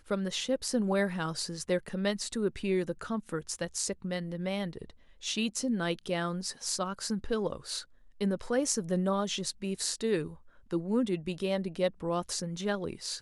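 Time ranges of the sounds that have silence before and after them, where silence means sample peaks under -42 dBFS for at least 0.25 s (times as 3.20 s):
5.23–7.83 s
8.21–10.34 s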